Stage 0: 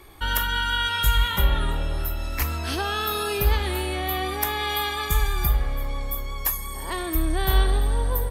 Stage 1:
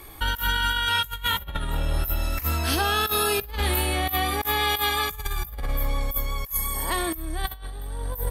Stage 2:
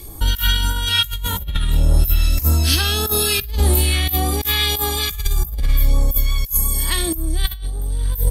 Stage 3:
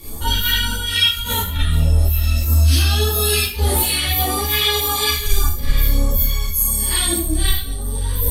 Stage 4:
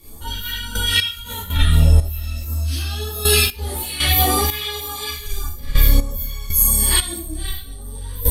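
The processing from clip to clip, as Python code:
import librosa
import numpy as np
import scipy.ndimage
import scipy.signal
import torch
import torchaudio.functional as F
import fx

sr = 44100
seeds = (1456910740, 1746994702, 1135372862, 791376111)

y1 = fx.peak_eq(x, sr, hz=14000.0, db=10.0, octaves=0.82)
y1 = fx.notch(y1, sr, hz=380.0, q=12.0)
y1 = fx.over_compress(y1, sr, threshold_db=-25.0, ratio=-0.5)
y2 = fx.phaser_stages(y1, sr, stages=2, low_hz=620.0, high_hz=2000.0, hz=1.7, feedback_pct=50)
y2 = y2 * librosa.db_to_amplitude(8.0)
y3 = fx.rev_schroeder(y2, sr, rt60_s=0.41, comb_ms=26, drr_db=-7.0)
y3 = fx.rider(y3, sr, range_db=5, speed_s=0.5)
y3 = fx.ensemble(y3, sr)
y3 = y3 * librosa.db_to_amplitude(-3.0)
y4 = fx.step_gate(y3, sr, bpm=60, pattern='...x..xx..', floor_db=-12.0, edge_ms=4.5)
y4 = y4 * librosa.db_to_amplitude(3.0)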